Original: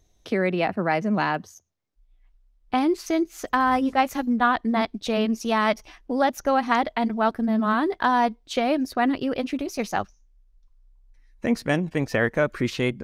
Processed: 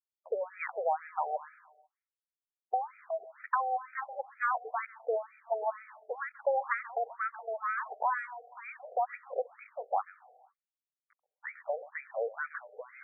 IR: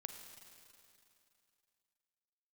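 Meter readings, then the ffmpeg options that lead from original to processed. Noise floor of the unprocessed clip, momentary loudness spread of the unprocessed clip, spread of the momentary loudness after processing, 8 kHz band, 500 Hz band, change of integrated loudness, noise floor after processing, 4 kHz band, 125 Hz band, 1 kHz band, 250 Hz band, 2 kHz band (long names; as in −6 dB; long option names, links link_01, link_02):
−62 dBFS, 7 LU, 12 LU, below −40 dB, −9.5 dB, −11.5 dB, below −85 dBFS, below −40 dB, below −40 dB, −9.0 dB, below −40 dB, −10.5 dB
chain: -filter_complex "[0:a]acompressor=threshold=-23dB:ratio=5,acrusher=bits=7:mix=0:aa=0.000001,aeval=exprs='0.251*(cos(1*acos(clip(val(0)/0.251,-1,1)))-cos(1*PI/2))+0.0631*(cos(2*acos(clip(val(0)/0.251,-1,1)))-cos(2*PI/2))+0.00447*(cos(4*acos(clip(val(0)/0.251,-1,1)))-cos(4*PI/2))':channel_layout=same,asplit=2[link_01][link_02];[1:a]atrim=start_sample=2205,afade=type=out:start_time=0.43:duration=0.01,atrim=end_sample=19404,adelay=133[link_03];[link_02][link_03]afir=irnorm=-1:irlink=0,volume=-12.5dB[link_04];[link_01][link_04]amix=inputs=2:normalize=0,afftfilt=real='re*between(b*sr/1024,550*pow(1800/550,0.5+0.5*sin(2*PI*2.1*pts/sr))/1.41,550*pow(1800/550,0.5+0.5*sin(2*PI*2.1*pts/sr))*1.41)':imag='im*between(b*sr/1024,550*pow(1800/550,0.5+0.5*sin(2*PI*2.1*pts/sr))/1.41,550*pow(1800/550,0.5+0.5*sin(2*PI*2.1*pts/sr))*1.41)':win_size=1024:overlap=0.75"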